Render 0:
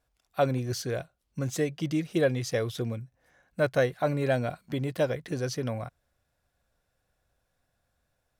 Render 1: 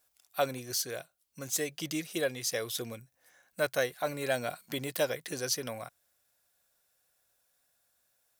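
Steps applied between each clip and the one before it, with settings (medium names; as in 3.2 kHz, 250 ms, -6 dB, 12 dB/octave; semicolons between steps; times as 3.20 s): RIAA curve recording; gain riding within 4 dB 0.5 s; trim -2.5 dB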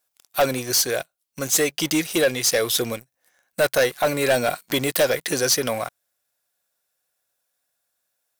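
bass shelf 120 Hz -9.5 dB; waveshaping leveller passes 3; trim +4 dB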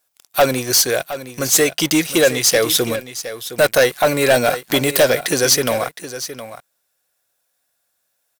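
delay 715 ms -13 dB; trim +5.5 dB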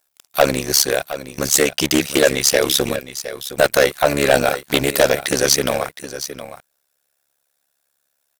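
AM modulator 70 Hz, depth 90%; loudspeaker Doppler distortion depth 0.18 ms; trim +3.5 dB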